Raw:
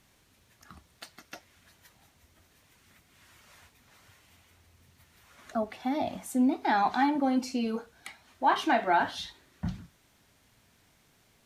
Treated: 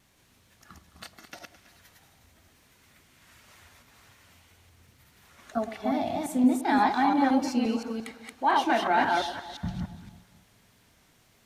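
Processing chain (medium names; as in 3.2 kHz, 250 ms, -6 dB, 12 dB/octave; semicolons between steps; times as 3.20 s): chunks repeated in reverse 174 ms, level -1.5 dB; vibrato 1.8 Hz 23 cents; echo whose repeats swap between lows and highs 107 ms, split 1 kHz, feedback 64%, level -11.5 dB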